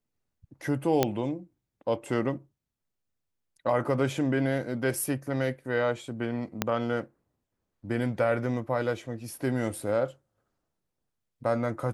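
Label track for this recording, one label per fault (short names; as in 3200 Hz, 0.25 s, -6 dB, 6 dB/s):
1.030000	1.030000	pop -8 dBFS
6.620000	6.620000	pop -9 dBFS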